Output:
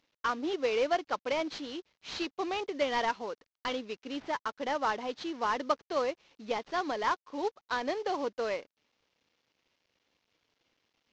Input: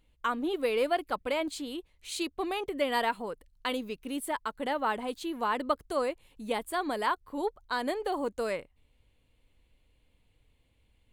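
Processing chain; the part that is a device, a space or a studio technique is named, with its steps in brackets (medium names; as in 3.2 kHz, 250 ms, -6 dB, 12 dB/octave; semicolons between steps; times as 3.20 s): early wireless headset (high-pass 280 Hz 12 dB/octave; CVSD coder 32 kbps)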